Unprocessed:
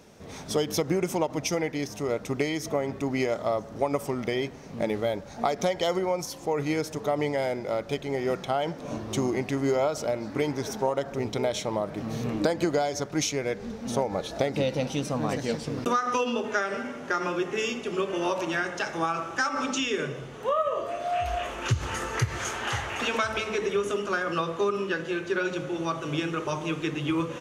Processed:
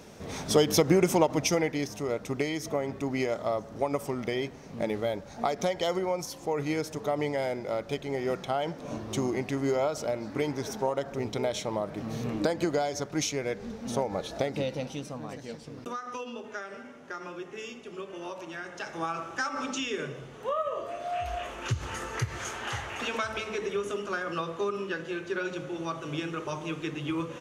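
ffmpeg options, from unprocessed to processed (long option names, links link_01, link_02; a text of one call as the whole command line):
ffmpeg -i in.wav -af "volume=11dB,afade=type=out:start_time=1.12:duration=0.93:silence=0.473151,afade=type=out:start_time=14.31:duration=0.95:silence=0.354813,afade=type=in:start_time=18.58:duration=0.52:silence=0.446684" out.wav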